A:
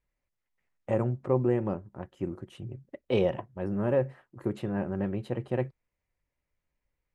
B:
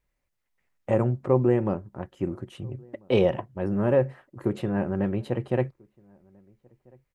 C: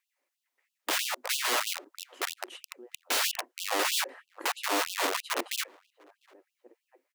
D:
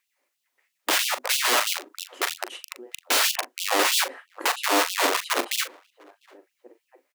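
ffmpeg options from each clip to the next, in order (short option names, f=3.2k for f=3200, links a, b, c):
-filter_complex "[0:a]asplit=2[a][b];[b]adelay=1341,volume=-29dB,highshelf=f=4k:g=-30.2[c];[a][c]amix=inputs=2:normalize=0,volume=4.5dB"
-filter_complex "[0:a]aeval=exprs='(mod(17.8*val(0)+1,2)-1)/17.8':c=same,asplit=2[a][b];[b]adelay=699.7,volume=-27dB,highshelf=f=4k:g=-15.7[c];[a][c]amix=inputs=2:normalize=0,afftfilt=real='re*gte(b*sr/1024,220*pow(2700/220,0.5+0.5*sin(2*PI*3.1*pts/sr)))':imag='im*gte(b*sr/1024,220*pow(2700/220,0.5+0.5*sin(2*PI*3.1*pts/sr)))':win_size=1024:overlap=0.75,volume=3dB"
-filter_complex "[0:a]asplit=2[a][b];[b]adelay=40,volume=-11.5dB[c];[a][c]amix=inputs=2:normalize=0,volume=6.5dB"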